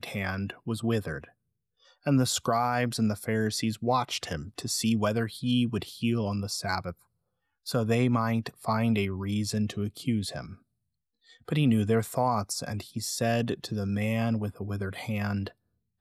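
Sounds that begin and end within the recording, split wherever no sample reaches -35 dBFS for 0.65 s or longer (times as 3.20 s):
2.06–6.91 s
7.67–10.53 s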